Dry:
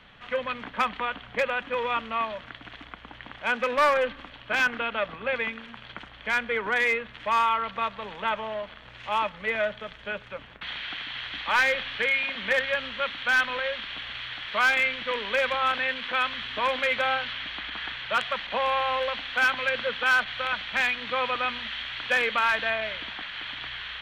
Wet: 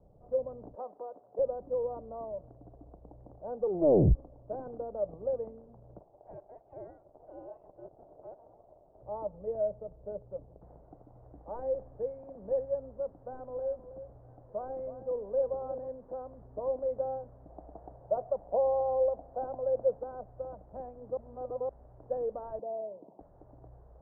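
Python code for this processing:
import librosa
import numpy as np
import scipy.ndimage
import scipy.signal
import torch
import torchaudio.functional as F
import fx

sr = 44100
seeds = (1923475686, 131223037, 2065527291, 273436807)

y = fx.highpass(x, sr, hz=440.0, slope=12, at=(0.75, 1.39))
y = fx.freq_invert(y, sr, carrier_hz=4000, at=(5.99, 9.03))
y = fx.notch(y, sr, hz=1700.0, q=6.0, at=(10.78, 11.25))
y = fx.echo_alternate(y, sr, ms=320, hz=1900.0, feedback_pct=53, wet_db=-12.0, at=(13.17, 15.89))
y = fx.peak_eq(y, sr, hz=690.0, db=8.0, octaves=0.82, at=(17.49, 19.99))
y = fx.cheby1_bandpass(y, sr, low_hz=180.0, high_hz=970.0, order=3, at=(22.59, 23.2))
y = fx.edit(y, sr, fx.tape_stop(start_s=3.6, length_s=0.55),
    fx.reverse_span(start_s=21.17, length_s=0.52), tone=tone)
y = scipy.signal.sosfilt(scipy.signal.butter(6, 660.0, 'lowpass', fs=sr, output='sos'), y)
y = fx.peak_eq(y, sr, hz=230.0, db=-11.0, octaves=0.55)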